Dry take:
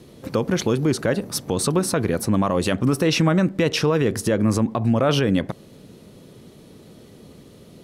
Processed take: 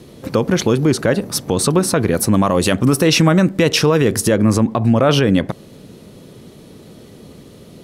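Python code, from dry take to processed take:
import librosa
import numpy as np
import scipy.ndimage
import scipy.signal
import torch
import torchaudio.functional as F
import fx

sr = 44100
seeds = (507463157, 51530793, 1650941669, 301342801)

y = fx.high_shelf(x, sr, hz=6000.0, db=7.0, at=(2.14, 4.36))
y = y * librosa.db_to_amplitude(5.5)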